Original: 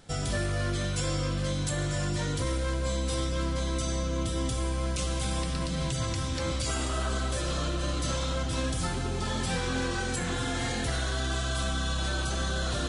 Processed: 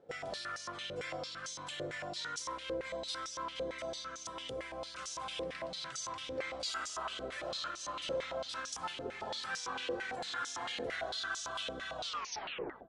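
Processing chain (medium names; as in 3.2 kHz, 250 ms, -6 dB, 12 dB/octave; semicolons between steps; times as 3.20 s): tape stop on the ending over 0.92 s; echo from a far wall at 270 m, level -19 dB; step-sequenced band-pass 8.9 Hz 490–5900 Hz; trim +4 dB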